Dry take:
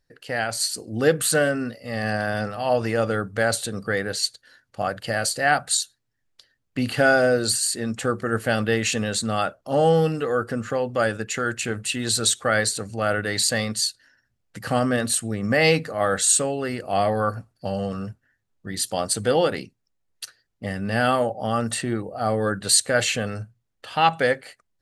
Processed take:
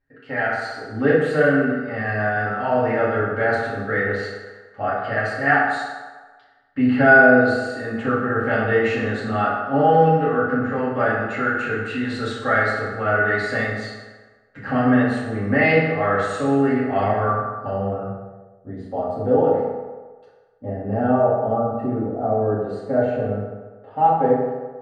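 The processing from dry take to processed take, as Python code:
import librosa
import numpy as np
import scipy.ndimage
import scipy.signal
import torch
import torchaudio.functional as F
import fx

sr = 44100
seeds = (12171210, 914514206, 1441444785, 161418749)

y = fx.spec_erase(x, sr, start_s=21.55, length_s=0.24, low_hz=1600.0, high_hz=9700.0)
y = fx.rev_fdn(y, sr, rt60_s=1.4, lf_ratio=0.75, hf_ratio=0.6, size_ms=22.0, drr_db=-8.5)
y = fx.filter_sweep_lowpass(y, sr, from_hz=1800.0, to_hz=670.0, start_s=17.45, end_s=18.64, q=1.4)
y = y * librosa.db_to_amplitude(-7.0)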